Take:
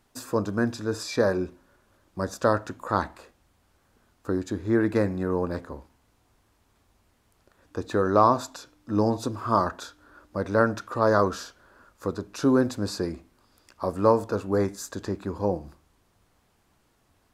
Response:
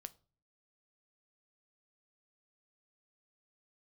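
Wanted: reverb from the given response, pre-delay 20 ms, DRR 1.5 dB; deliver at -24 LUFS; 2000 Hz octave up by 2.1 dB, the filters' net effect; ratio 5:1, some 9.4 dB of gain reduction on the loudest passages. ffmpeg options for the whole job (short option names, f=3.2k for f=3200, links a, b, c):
-filter_complex "[0:a]equalizer=f=2k:t=o:g=3,acompressor=threshold=-24dB:ratio=5,asplit=2[a][b];[1:a]atrim=start_sample=2205,adelay=20[c];[b][c]afir=irnorm=-1:irlink=0,volume=4dB[d];[a][d]amix=inputs=2:normalize=0,volume=5dB"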